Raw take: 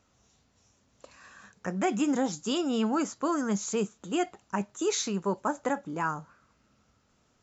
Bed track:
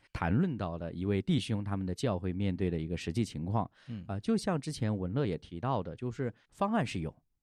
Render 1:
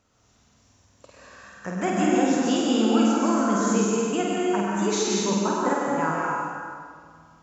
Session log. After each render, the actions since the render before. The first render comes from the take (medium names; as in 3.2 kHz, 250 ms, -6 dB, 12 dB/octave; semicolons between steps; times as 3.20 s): flutter echo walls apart 8.5 m, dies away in 0.77 s; plate-style reverb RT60 2 s, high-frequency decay 0.7×, pre-delay 115 ms, DRR -2.5 dB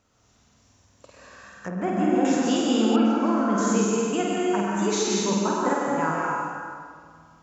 1.68–2.25 s: low-pass 1.1 kHz 6 dB/octave; 2.96–3.58 s: distance through air 220 m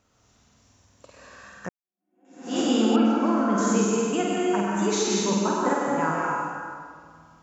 1.69–2.59 s: fade in exponential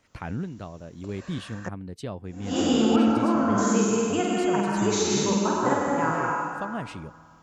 add bed track -3 dB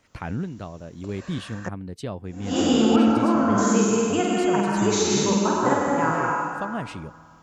trim +2.5 dB